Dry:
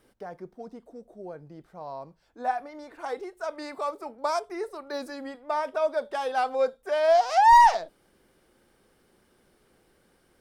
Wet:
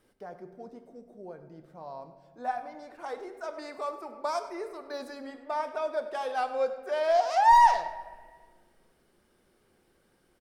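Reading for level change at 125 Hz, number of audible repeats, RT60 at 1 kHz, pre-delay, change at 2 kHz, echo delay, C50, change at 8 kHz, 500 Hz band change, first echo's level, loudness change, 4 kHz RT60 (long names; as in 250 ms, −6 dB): can't be measured, 1, 1.4 s, 5 ms, −4.0 dB, 100 ms, 10.0 dB, −4.0 dB, −4.0 dB, −16.0 dB, −3.0 dB, 0.95 s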